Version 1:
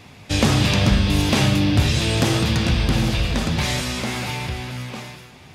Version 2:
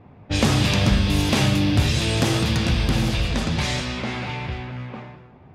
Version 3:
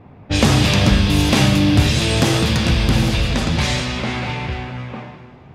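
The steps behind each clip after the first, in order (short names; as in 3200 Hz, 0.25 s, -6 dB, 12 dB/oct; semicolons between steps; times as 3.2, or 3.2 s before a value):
low-pass opened by the level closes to 870 Hz, open at -15.5 dBFS; gain -1.5 dB
plate-style reverb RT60 2.8 s, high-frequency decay 0.9×, DRR 12 dB; gain +4.5 dB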